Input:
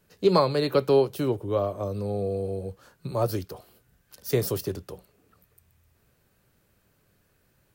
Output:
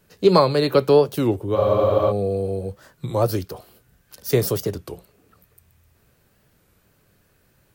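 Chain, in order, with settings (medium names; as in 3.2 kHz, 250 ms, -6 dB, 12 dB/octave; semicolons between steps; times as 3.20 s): spectral freeze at 1.57 s, 0.54 s; warped record 33 1/3 rpm, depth 160 cents; trim +5.5 dB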